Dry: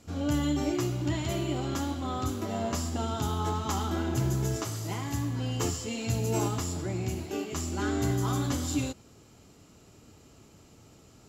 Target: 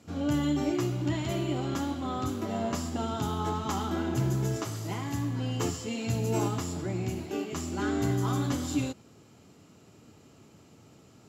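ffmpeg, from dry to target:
ffmpeg -i in.wav -af "highpass=120,bass=frequency=250:gain=3,treble=frequency=4000:gain=-4" out.wav

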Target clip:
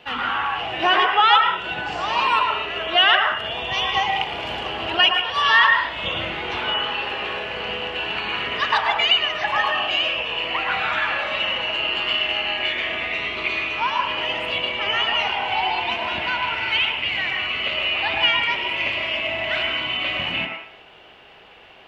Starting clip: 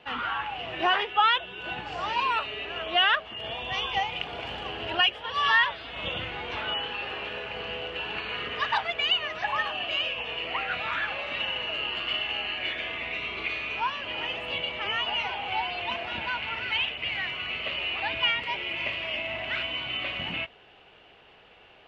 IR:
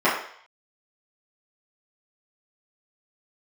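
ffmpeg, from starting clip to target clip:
-filter_complex "[0:a]highshelf=frequency=4400:gain=7.5,asplit=2[link_01][link_02];[1:a]atrim=start_sample=2205,adelay=103[link_03];[link_02][link_03]afir=irnorm=-1:irlink=0,volume=-21.5dB[link_04];[link_01][link_04]amix=inputs=2:normalize=0,volume=4.5dB"

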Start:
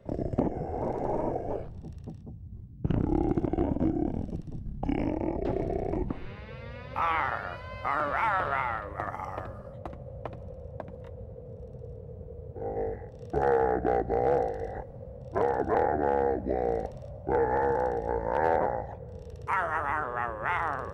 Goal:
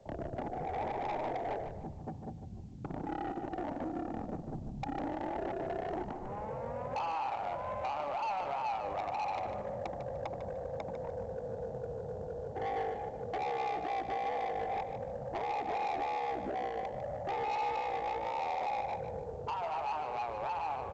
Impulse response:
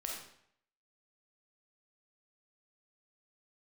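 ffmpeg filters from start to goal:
-filter_complex "[0:a]acrossover=split=160[link_01][link_02];[link_02]dynaudnorm=framelen=360:gausssize=9:maxgain=9.5dB[link_03];[link_01][link_03]amix=inputs=2:normalize=0,alimiter=limit=-12.5dB:level=0:latency=1:release=237,acompressor=threshold=-29dB:ratio=4,lowpass=frequency=820:width_type=q:width=4.9,asoftclip=type=tanh:threshold=-26dB,aecho=1:1:150|300|450:0.355|0.0958|0.0259,volume=-6dB" -ar 16000 -c:a pcm_alaw

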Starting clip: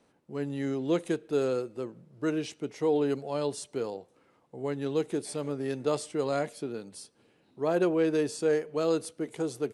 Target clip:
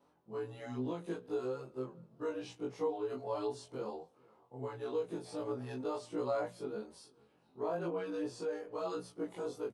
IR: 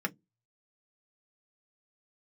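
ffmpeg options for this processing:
-filter_complex "[0:a]afftfilt=real='re':imag='-im':win_size=2048:overlap=0.75,bandreject=frequency=60:width_type=h:width=6,bandreject=frequency=120:width_type=h:width=6,bandreject=frequency=180:width_type=h:width=6,bandreject=frequency=240:width_type=h:width=6,acrossover=split=7000[link_01][link_02];[link_02]acompressor=threshold=-55dB:ratio=4:attack=1:release=60[link_03];[link_01][link_03]amix=inputs=2:normalize=0,equalizer=frequency=69:width=1.2:gain=4,acompressor=threshold=-34dB:ratio=5,flanger=delay=16:depth=3:speed=1.1,equalizer=frequency=1000:width_type=o:width=1:gain=8,equalizer=frequency=2000:width_type=o:width=1:gain=-5,equalizer=frequency=8000:width_type=o:width=1:gain=-5,asplit=2[link_04][link_05];[link_05]adelay=443.1,volume=-26dB,highshelf=frequency=4000:gain=-9.97[link_06];[link_04][link_06]amix=inputs=2:normalize=0,volume=1.5dB"

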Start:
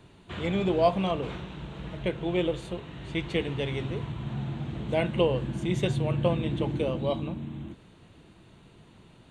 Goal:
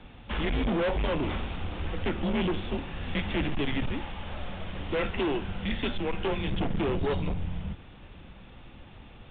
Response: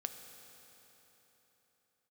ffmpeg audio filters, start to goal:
-filter_complex "[0:a]asettb=1/sr,asplit=3[link_01][link_02][link_03];[link_01]atrim=end=3.914[link_04];[link_02]atrim=start=3.91:end=6.48,asetpts=PTS-STARTPTS,afade=type=in:duration=0.004:curve=qsin,afade=type=out:start_time=2.566:duration=0.004:curve=qsin,lowshelf=frequency=410:gain=-9.5[link_05];[link_03]atrim=start=6.476[link_06];[link_04][link_05]acrossfade=duration=0.004:curve1=hsin:curve2=qsin[link_07];[link_07][link_06]acrossfade=duration=0.004:curve1=qsin:curve2=hsin,afreqshift=-140,volume=31.5dB,asoftclip=hard,volume=-31.5dB,volume=6.5dB" -ar 8000 -c:a pcm_mulaw

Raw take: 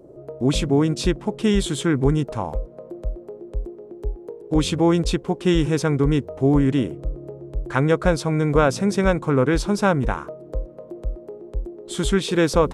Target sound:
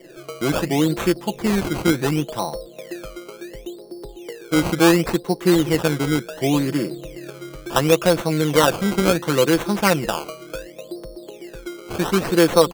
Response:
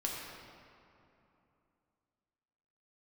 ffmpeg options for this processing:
-filter_complex "[0:a]equalizer=frequency=65:width=0.7:gain=-13.5,aecho=1:1:5.9:0.55,acrossover=split=130[link_01][link_02];[link_01]acompressor=threshold=-40dB:ratio=6[link_03];[link_03][link_02]amix=inputs=2:normalize=0,acrusher=samples=17:mix=1:aa=0.000001:lfo=1:lforange=17:lforate=0.7,volume=1.5dB"

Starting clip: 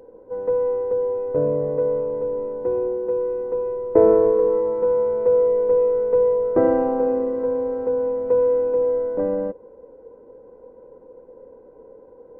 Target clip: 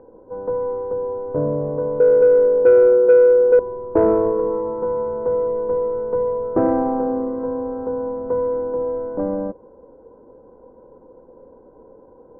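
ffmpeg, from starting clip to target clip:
ffmpeg -i in.wav -af "asetnsamples=nb_out_samples=441:pad=0,asendcmd='2 equalizer g 9.5;3.59 equalizer g -8',equalizer=frequency=480:width=3:gain=-7,lowpass=frequency=1400:width=0.5412,lowpass=frequency=1400:width=1.3066,acontrast=78,volume=-2.5dB" out.wav

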